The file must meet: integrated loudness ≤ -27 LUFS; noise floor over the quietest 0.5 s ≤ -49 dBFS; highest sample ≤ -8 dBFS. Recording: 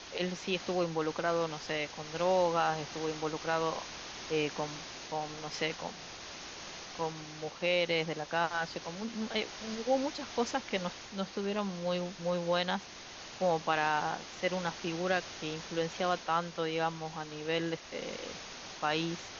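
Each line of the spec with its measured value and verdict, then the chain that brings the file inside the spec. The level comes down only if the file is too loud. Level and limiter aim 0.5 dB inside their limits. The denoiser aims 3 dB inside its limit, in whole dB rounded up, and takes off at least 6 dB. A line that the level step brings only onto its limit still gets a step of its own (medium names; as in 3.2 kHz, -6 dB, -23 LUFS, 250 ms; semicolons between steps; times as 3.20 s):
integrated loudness -34.5 LUFS: pass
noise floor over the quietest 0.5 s -48 dBFS: fail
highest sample -14.5 dBFS: pass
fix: noise reduction 6 dB, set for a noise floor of -48 dBFS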